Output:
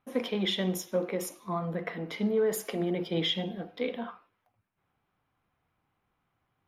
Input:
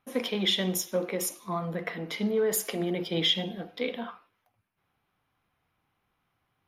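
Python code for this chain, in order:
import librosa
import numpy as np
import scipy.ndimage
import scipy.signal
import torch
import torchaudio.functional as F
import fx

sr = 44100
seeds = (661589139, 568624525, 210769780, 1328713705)

y = fx.high_shelf(x, sr, hz=2600.0, db=-8.5)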